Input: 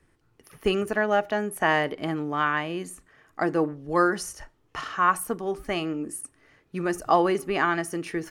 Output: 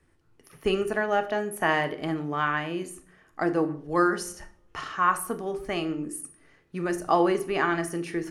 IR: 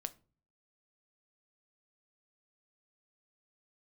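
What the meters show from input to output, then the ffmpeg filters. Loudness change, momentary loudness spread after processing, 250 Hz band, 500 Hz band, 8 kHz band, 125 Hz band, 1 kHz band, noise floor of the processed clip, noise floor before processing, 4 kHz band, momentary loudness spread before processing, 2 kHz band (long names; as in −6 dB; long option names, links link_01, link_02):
−1.0 dB, 14 LU, 0.0 dB, −1.0 dB, −1.0 dB, −0.5 dB, −1.5 dB, −63 dBFS, −66 dBFS, −1.5 dB, 14 LU, −1.5 dB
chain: -filter_complex "[1:a]atrim=start_sample=2205,asetrate=24255,aresample=44100[link_01];[0:a][link_01]afir=irnorm=-1:irlink=0,volume=-2.5dB"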